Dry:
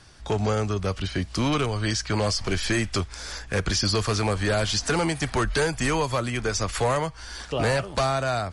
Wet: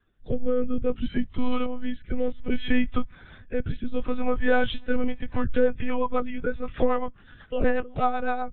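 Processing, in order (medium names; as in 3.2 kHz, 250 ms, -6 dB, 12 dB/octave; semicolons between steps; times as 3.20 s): monotone LPC vocoder at 8 kHz 250 Hz; rotary cabinet horn 0.6 Hz, later 8 Hz, at 4.73 s; spectral contrast expander 1.5:1; trim +4 dB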